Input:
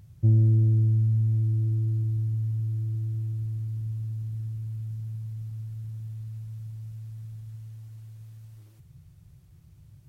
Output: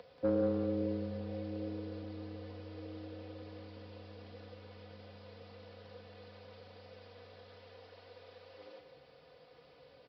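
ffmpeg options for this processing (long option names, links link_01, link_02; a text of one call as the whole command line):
ffmpeg -i in.wav -af "highpass=frequency=530:width_type=q:width=5.7,aecho=1:1:4:0.67,afreqshift=-17,aresample=11025,asoftclip=type=tanh:threshold=-30.5dB,aresample=44100,aecho=1:1:182:0.376,volume=8dB" out.wav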